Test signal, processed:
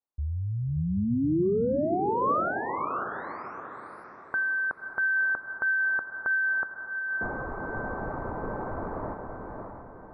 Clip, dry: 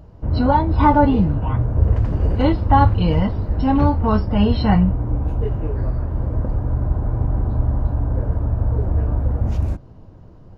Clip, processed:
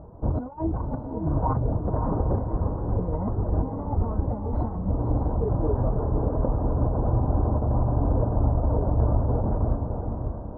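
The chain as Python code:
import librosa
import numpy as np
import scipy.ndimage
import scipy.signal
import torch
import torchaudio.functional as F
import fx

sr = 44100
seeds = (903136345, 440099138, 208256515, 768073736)

y = fx.dereverb_blind(x, sr, rt60_s=0.5)
y = scipy.signal.sosfilt(scipy.signal.cheby2(4, 50, 2800.0, 'lowpass', fs=sr, output='sos'), y)
y = fx.low_shelf(y, sr, hz=250.0, db=-10.0)
y = fx.over_compress(y, sr, threshold_db=-28.0, ratio=-0.5)
y = fx.echo_diffused(y, sr, ms=588, feedback_pct=42, wet_db=-4.5)
y = F.gain(torch.from_numpy(y), 3.0).numpy()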